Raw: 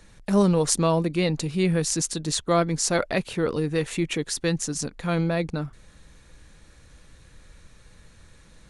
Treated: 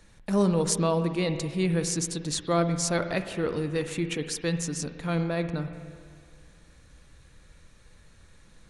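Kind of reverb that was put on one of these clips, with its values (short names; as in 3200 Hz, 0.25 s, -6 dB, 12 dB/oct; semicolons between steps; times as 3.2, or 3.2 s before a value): spring tank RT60 2 s, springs 47/59 ms, chirp 80 ms, DRR 8.5 dB; gain -4 dB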